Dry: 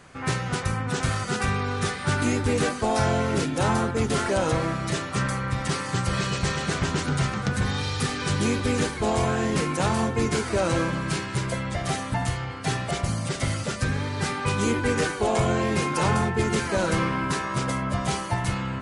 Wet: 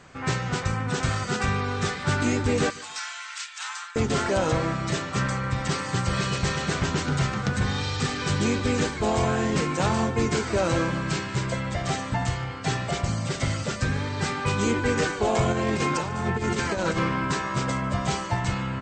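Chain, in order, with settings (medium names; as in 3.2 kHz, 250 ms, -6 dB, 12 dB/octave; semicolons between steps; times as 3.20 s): 2.70–3.96 s: Bessel high-pass 1.9 kHz, order 8; 15.52–16.99 s: compressor with a negative ratio -25 dBFS, ratio -0.5; brick-wall FIR low-pass 8.5 kHz; feedback delay 147 ms, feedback 31%, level -22 dB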